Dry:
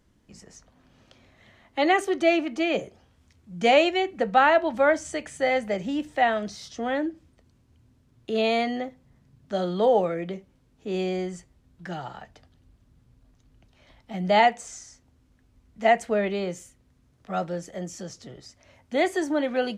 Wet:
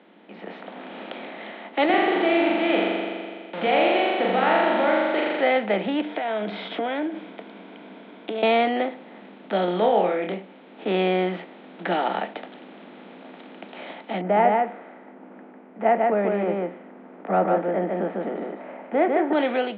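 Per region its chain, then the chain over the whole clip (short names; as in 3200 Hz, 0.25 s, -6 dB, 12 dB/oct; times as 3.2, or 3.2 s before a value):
1.85–5.41 compressor 2.5:1, threshold -24 dBFS + sample gate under -35 dBFS + flutter echo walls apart 7.1 m, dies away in 1.2 s
6.01–8.43 compressor, threshold -38 dBFS + ripple EQ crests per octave 1.7, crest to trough 8 dB
9.65–10.34 air absorption 62 m + flutter echo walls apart 4.8 m, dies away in 0.27 s
14.21–19.33 Bessel low-pass 1100 Hz, order 6 + echo 0.149 s -4.5 dB
whole clip: per-bin compression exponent 0.6; Chebyshev band-pass 190–3700 Hz, order 5; AGC; gain -7 dB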